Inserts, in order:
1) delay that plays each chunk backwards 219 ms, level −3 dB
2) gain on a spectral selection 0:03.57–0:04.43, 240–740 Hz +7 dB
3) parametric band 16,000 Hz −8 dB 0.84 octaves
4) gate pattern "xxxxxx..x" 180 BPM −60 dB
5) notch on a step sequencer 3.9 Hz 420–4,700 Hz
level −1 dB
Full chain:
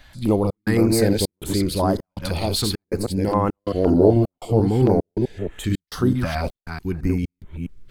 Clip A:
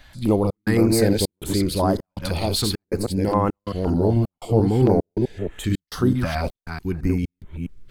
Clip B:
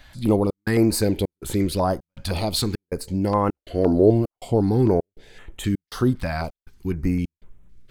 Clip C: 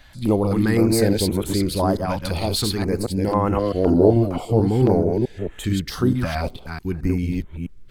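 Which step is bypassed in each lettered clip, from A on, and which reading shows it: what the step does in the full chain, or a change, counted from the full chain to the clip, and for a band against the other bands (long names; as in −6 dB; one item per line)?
2, change in crest factor −2.0 dB
1, change in crest factor −1.5 dB
4, change in momentary loudness spread −1 LU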